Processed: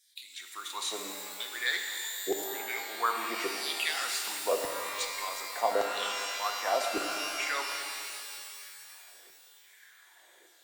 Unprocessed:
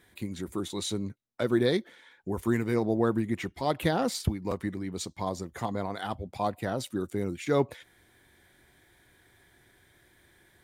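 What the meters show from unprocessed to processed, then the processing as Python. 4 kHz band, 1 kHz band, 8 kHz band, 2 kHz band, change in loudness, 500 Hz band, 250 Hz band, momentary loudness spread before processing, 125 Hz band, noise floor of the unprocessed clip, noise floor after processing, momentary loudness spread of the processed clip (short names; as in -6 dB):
+6.5 dB, +2.0 dB, +7.0 dB, +6.5 dB, -1.5 dB, -5.0 dB, -16.0 dB, 9 LU, under -30 dB, -63 dBFS, -59 dBFS, 13 LU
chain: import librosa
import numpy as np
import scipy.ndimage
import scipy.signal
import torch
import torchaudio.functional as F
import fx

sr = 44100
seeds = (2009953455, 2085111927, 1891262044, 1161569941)

y = scipy.signal.sosfilt(scipy.signal.butter(4, 220.0, 'highpass', fs=sr, output='sos'), x)
y = fx.filter_lfo_highpass(y, sr, shape='saw_down', hz=0.86, low_hz=430.0, high_hz=5700.0, q=3.2)
y = fx.rev_shimmer(y, sr, seeds[0], rt60_s=2.5, semitones=12, shimmer_db=-2, drr_db=3.5)
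y = y * librosa.db_to_amplitude(-1.0)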